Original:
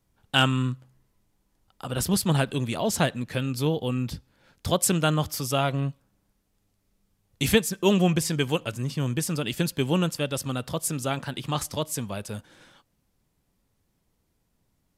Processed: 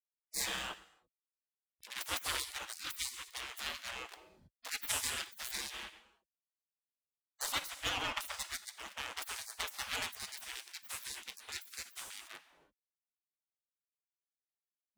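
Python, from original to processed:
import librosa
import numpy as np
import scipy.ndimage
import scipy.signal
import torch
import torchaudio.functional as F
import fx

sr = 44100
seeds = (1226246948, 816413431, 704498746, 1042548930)

y = fx.backlash(x, sr, play_db=-24.0)
y = fx.high_shelf(y, sr, hz=4100.0, db=-9.5, at=(7.46, 8.34))
y = fx.rev_gated(y, sr, seeds[0], gate_ms=350, shape='falling', drr_db=11.5)
y = fx.spec_gate(y, sr, threshold_db=-30, keep='weak')
y = y * 10.0 ** (5.5 / 20.0)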